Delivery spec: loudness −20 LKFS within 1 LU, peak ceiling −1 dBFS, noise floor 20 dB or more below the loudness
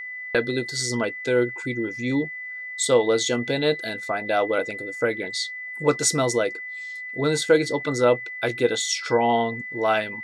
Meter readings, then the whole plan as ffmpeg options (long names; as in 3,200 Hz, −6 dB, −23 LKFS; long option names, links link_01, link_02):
interfering tone 2,000 Hz; level of the tone −32 dBFS; integrated loudness −24.0 LKFS; sample peak −6.0 dBFS; target loudness −20.0 LKFS
→ -af "bandreject=frequency=2000:width=30"
-af "volume=4dB"